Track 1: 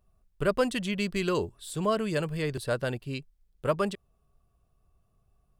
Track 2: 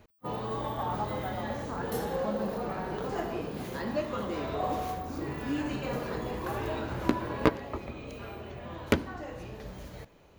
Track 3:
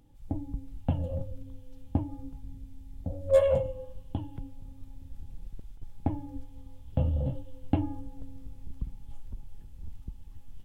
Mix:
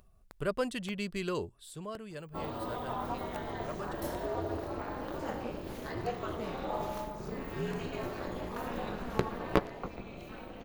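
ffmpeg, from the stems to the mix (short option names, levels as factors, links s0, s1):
-filter_complex "[0:a]acompressor=mode=upward:threshold=0.00501:ratio=2.5,volume=0.473,afade=t=out:st=1.57:d=0.3:silence=0.375837[s0];[1:a]aeval=exprs='val(0)*sin(2*PI*120*n/s)':c=same,adelay=2100,volume=0.891[s1];[2:a]acompressor=threshold=0.0141:ratio=2,acrusher=bits=3:mix=0:aa=0.000001,volume=0.178[s2];[s0][s1][s2]amix=inputs=3:normalize=0"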